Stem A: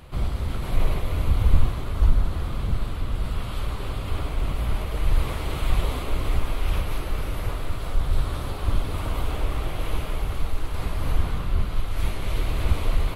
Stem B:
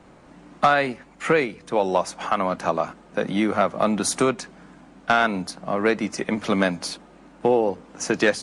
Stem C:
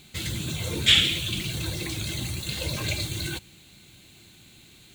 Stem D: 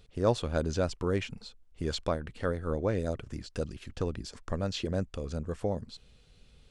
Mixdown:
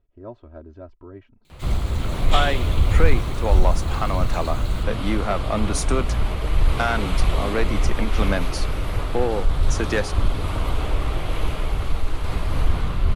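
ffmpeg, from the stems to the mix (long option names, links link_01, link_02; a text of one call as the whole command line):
ffmpeg -i stem1.wav -i stem2.wav -i stem3.wav -i stem4.wav -filter_complex "[0:a]lowpass=9500,acontrast=37,adelay=1500,volume=-2dB[link_01];[1:a]acontrast=85,adelay=1700,volume=-10dB[link_02];[2:a]adelay=1450,volume=-10.5dB[link_03];[3:a]lowpass=1300,aecho=1:1:3.1:0.87,volume=-12.5dB[link_04];[link_01][link_02][link_03][link_04]amix=inputs=4:normalize=0" out.wav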